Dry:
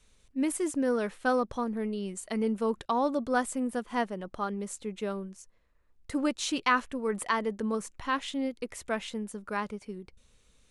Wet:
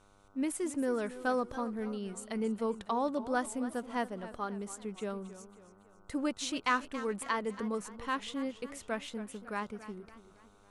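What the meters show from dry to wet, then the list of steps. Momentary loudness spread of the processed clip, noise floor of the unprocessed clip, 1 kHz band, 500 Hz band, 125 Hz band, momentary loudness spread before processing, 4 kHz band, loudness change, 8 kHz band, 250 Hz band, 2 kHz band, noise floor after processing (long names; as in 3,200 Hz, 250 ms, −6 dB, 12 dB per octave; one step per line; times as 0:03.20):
10 LU, −65 dBFS, −4.5 dB, −4.5 dB, −4.5 dB, 9 LU, −4.5 dB, −4.5 dB, −4.5 dB, −4.5 dB, −4.5 dB, −61 dBFS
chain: hum with harmonics 100 Hz, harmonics 15, −61 dBFS −1 dB per octave
feedback echo with a swinging delay time 276 ms, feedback 47%, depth 112 cents, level −14.5 dB
level −4.5 dB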